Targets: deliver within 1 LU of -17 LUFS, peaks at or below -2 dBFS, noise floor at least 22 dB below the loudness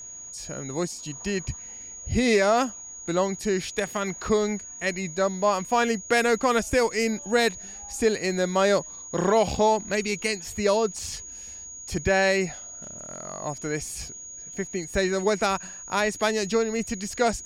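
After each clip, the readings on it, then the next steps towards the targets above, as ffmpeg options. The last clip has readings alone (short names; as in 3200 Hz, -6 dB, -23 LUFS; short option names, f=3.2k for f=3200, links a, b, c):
steady tone 6700 Hz; tone level -38 dBFS; loudness -25.5 LUFS; peak -11.0 dBFS; loudness target -17.0 LUFS
-> -af "bandreject=f=6.7k:w=30"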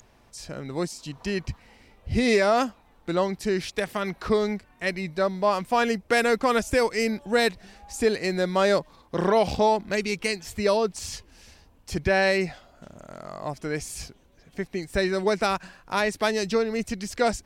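steady tone none; loudness -25.5 LUFS; peak -11.0 dBFS; loudness target -17.0 LUFS
-> -af "volume=8.5dB"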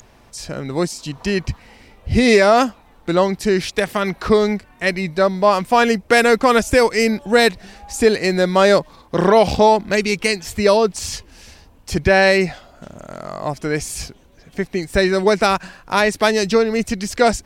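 loudness -17.0 LUFS; peak -2.5 dBFS; noise floor -49 dBFS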